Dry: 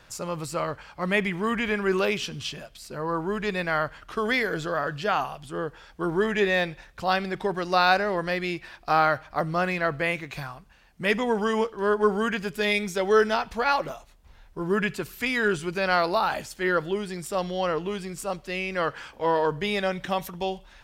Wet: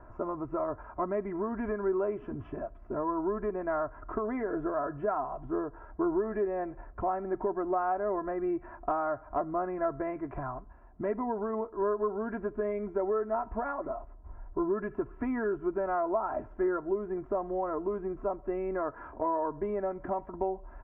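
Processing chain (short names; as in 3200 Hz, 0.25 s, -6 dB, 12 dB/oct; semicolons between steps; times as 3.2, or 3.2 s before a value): inverse Chebyshev low-pass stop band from 3900 Hz, stop band 60 dB; compressor 5:1, threshold -34 dBFS, peak gain reduction 16 dB; comb 3 ms, depth 78%; gain +3.5 dB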